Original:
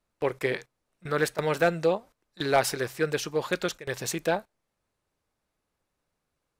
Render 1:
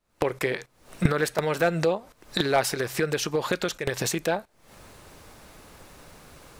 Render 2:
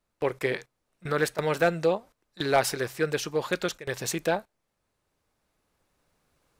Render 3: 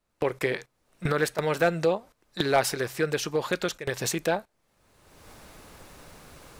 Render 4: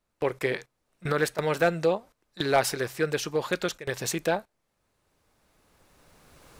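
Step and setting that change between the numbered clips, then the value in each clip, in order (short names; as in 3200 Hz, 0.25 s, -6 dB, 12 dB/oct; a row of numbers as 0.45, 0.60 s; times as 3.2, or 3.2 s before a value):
recorder AGC, rising by: 87, 5, 34, 13 dB/s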